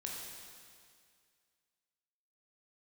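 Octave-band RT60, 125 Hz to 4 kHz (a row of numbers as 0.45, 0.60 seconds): 2.1, 2.1, 2.1, 2.1, 2.1, 2.1 seconds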